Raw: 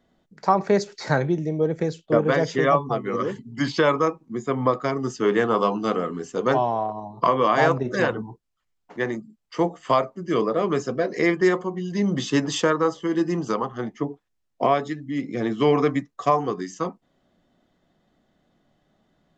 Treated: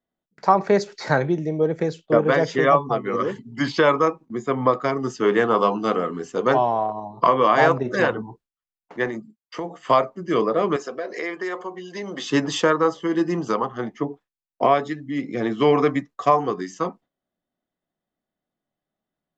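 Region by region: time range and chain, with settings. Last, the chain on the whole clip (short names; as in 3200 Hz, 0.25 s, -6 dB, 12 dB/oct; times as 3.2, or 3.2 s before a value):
9.07–9.82 HPF 63 Hz + compressor 10:1, threshold -26 dBFS
10.76–12.3 HPF 410 Hz + compressor 3:1, threshold -28 dBFS
whole clip: low shelf 280 Hz -5.5 dB; gate with hold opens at -41 dBFS; high shelf 5600 Hz -8 dB; gain +3.5 dB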